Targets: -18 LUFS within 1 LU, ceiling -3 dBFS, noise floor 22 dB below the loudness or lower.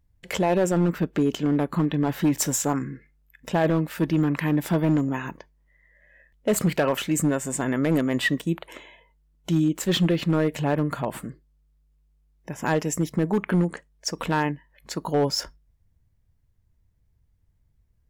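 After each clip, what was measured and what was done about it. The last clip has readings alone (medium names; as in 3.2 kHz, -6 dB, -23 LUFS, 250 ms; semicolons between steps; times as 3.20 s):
clipped samples 1.4%; clipping level -15.0 dBFS; loudness -24.5 LUFS; peak level -15.0 dBFS; loudness target -18.0 LUFS
-> clip repair -15 dBFS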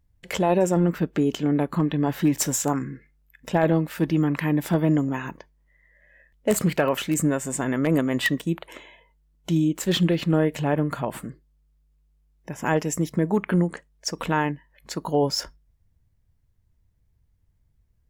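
clipped samples 0.0%; loudness -24.0 LUFS; peak level -6.0 dBFS; loudness target -18.0 LUFS
-> trim +6 dB; peak limiter -3 dBFS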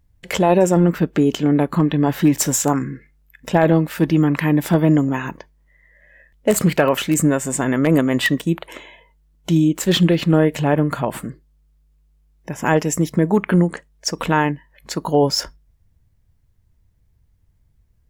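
loudness -18.0 LUFS; peak level -3.0 dBFS; noise floor -60 dBFS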